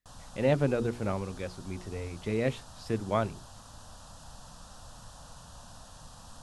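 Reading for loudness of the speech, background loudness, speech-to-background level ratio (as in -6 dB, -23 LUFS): -32.0 LUFS, -50.0 LUFS, 18.0 dB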